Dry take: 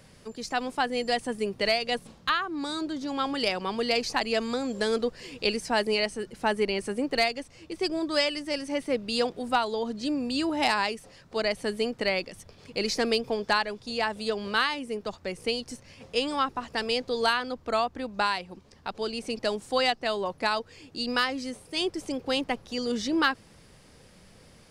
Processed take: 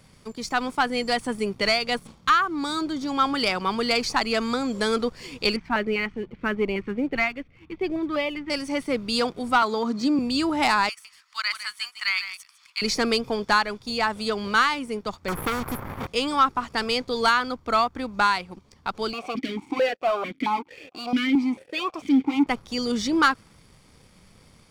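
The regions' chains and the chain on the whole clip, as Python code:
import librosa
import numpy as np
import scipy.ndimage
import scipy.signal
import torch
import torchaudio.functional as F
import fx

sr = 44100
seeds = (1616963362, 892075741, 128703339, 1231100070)

y = fx.chain(x, sr, fx.lowpass(hz=2700.0, slope=24),
    fx.filter_held_notch(hz=5.0, low_hz=500.0, high_hz=1500.0), at=(5.56, 8.5))
y = fx.chain(y, sr, fx.cabinet(low_hz=140.0, low_slope=24, high_hz=8400.0, hz=(270.0, 1200.0, 3100.0), db=(5, 6, -6)),
    fx.band_squash(depth_pct=40), at=(9.62, 10.19))
y = fx.chain(y, sr, fx.steep_highpass(hz=1100.0, slope=36),
    fx.echo_single(ms=154, db=-10.5), at=(10.89, 12.82))
y = fx.chain(y, sr, fx.cheby2_bandstop(low_hz=2300.0, high_hz=8900.0, order=4, stop_db=40),
    fx.leveller(passes=3),
    fx.spectral_comp(ratio=2.0), at=(15.28, 16.07))
y = fx.chain(y, sr, fx.leveller(passes=5),
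    fx.vowel_held(hz=4.5), at=(19.13, 22.47))
y = fx.dynamic_eq(y, sr, hz=1400.0, q=2.6, threshold_db=-44.0, ratio=4.0, max_db=6)
y = fx.leveller(y, sr, passes=1)
y = y + 0.31 * np.pad(y, (int(0.9 * sr / 1000.0), 0))[:len(y)]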